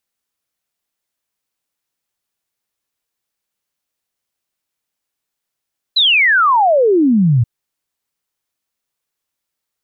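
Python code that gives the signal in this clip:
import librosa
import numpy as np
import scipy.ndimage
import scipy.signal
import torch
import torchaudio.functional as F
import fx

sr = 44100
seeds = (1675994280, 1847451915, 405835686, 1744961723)

y = fx.ess(sr, length_s=1.48, from_hz=4100.0, to_hz=110.0, level_db=-8.5)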